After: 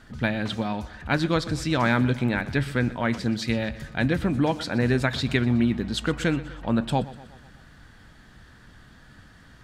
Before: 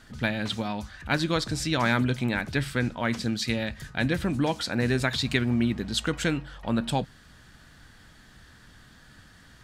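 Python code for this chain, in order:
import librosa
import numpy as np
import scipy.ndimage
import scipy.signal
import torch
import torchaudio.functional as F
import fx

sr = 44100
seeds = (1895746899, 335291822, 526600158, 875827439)

p1 = fx.high_shelf(x, sr, hz=2900.0, db=-8.0)
p2 = p1 + fx.echo_feedback(p1, sr, ms=123, feedback_pct=56, wet_db=-18.0, dry=0)
y = F.gain(torch.from_numpy(p2), 3.0).numpy()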